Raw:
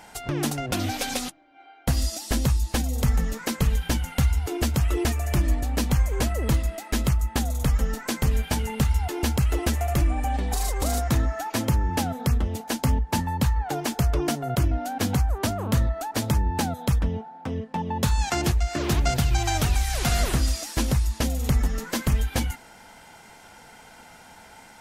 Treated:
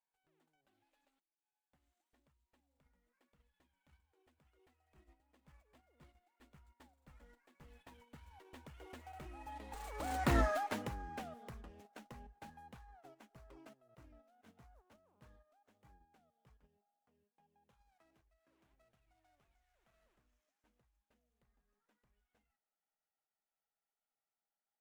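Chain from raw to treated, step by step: median filter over 9 samples; Doppler pass-by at 10.4, 26 m/s, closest 2.2 m; gate -57 dBFS, range -9 dB; bell 79 Hz -13.5 dB 3 oct; gain +3 dB

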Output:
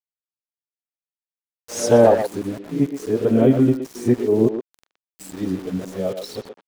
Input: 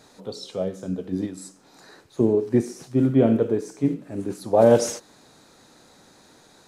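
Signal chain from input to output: whole clip reversed; sample gate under -38 dBFS; speakerphone echo 0.12 s, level -7 dB; gain +2.5 dB

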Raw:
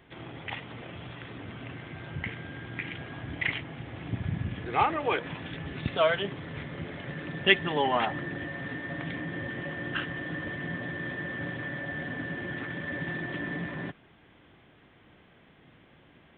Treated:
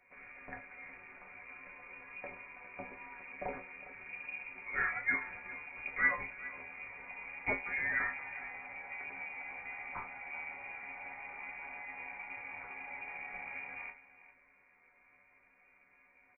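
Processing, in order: sample sorter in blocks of 8 samples; HPF 190 Hz 12 dB/oct; resonator bank D#3 minor, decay 0.24 s; on a send: echo 0.406 s -16.5 dB; on the sum: inverted band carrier 2600 Hz; gain +7.5 dB

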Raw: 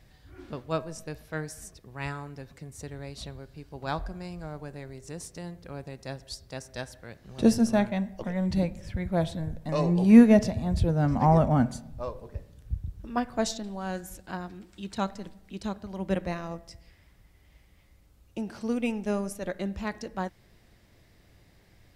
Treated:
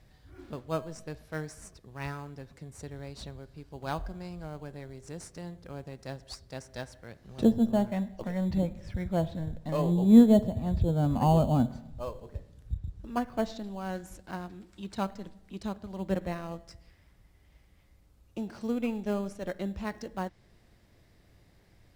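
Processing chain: treble ducked by the level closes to 1000 Hz, closed at -19.5 dBFS; in parallel at -11 dB: sample-rate reducer 3700 Hz, jitter 0%; on the sum: gain -4 dB

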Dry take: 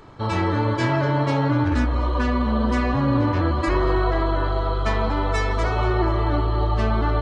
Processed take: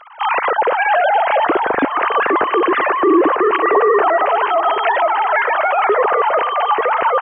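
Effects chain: sine-wave speech; in parallel at +1 dB: limiter -15.5 dBFS, peak gain reduction 9 dB; on the sum: feedback echo 0.479 s, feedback 55%, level -15 dB

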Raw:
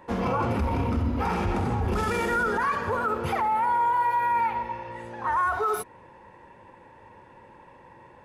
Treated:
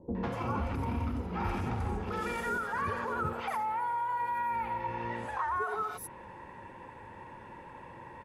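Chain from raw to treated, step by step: compressor 12:1, threshold -33 dBFS, peak gain reduction 12.5 dB; three bands offset in time lows, mids, highs 0.15/0.24 s, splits 520/5200 Hz; gain +3.5 dB

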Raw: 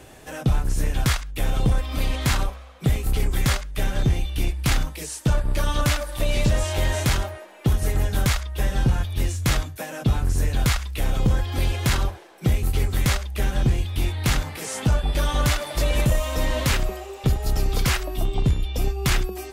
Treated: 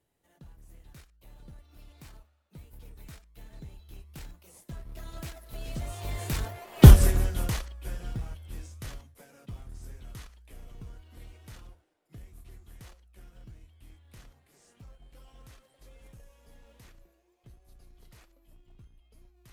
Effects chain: Doppler pass-by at 6.87, 37 m/s, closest 2.2 m; high shelf 11000 Hz +9.5 dB; in parallel at -6.5 dB: decimation with a swept rate 32×, swing 60% 1.3 Hz; on the sum: gain +7.5 dB

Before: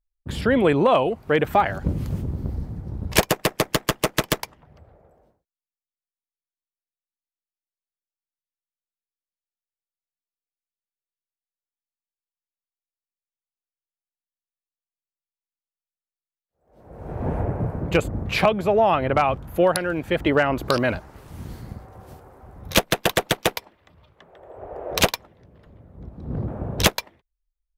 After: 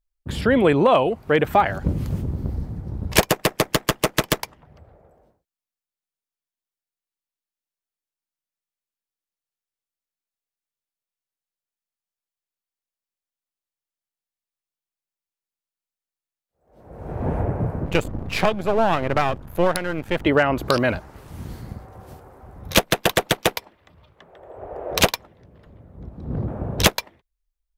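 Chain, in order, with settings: 17.85–20.25 half-wave gain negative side -12 dB; gain +1.5 dB

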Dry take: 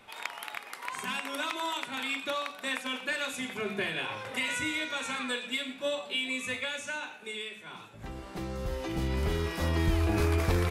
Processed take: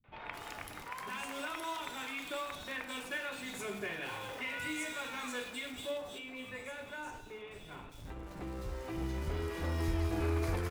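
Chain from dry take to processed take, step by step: in parallel at -10 dB: Schmitt trigger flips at -42.5 dBFS; 5.93–7.67 on the sum: high shelf 2000 Hz -10 dB; three bands offset in time lows, mids, highs 40/250 ms, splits 190/3300 Hz; FDN reverb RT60 0.98 s, high-frequency decay 0.75×, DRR 9 dB; gain -8 dB

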